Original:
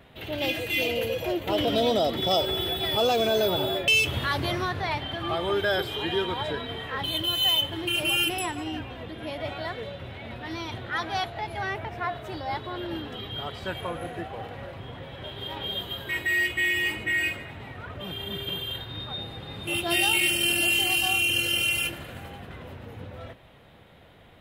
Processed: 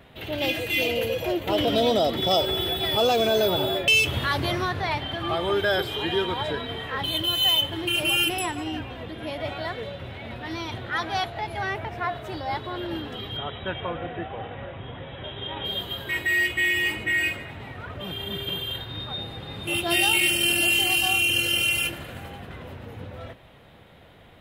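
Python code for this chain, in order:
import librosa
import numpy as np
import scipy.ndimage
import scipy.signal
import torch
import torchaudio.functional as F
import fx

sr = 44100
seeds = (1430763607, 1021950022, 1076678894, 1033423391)

y = fx.brickwall_lowpass(x, sr, high_hz=3900.0, at=(13.37, 15.65))
y = F.gain(torch.from_numpy(y), 2.0).numpy()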